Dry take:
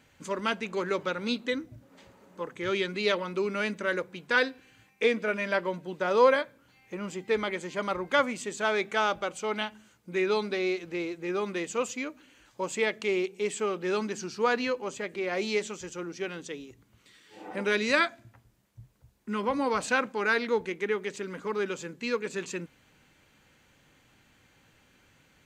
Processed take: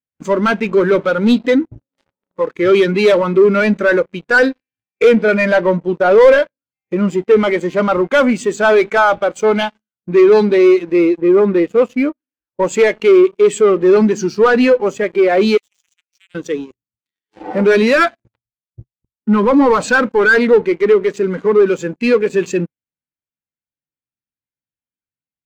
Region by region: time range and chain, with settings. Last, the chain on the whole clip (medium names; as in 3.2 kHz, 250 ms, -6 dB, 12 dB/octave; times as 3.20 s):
11.21–12.63 s: low-pass 5 kHz + treble shelf 2.7 kHz -8 dB
15.57–16.35 s: steep high-pass 2.2 kHz + compression, threshold -48 dBFS
whole clip: low-pass 7.9 kHz; waveshaping leveller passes 5; spectral contrast expander 1.5:1; trim +8.5 dB